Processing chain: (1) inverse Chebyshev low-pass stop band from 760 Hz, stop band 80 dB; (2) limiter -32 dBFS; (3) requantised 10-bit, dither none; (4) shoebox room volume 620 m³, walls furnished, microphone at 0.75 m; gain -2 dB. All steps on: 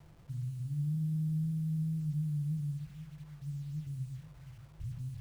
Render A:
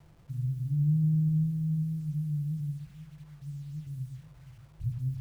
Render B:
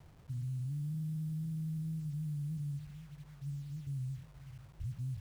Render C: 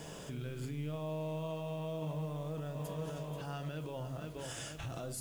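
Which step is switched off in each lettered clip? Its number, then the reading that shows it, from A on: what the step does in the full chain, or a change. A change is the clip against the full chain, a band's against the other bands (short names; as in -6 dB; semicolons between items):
2, mean gain reduction 2.5 dB; 4, echo-to-direct -9.0 dB to none; 1, crest factor change +2.5 dB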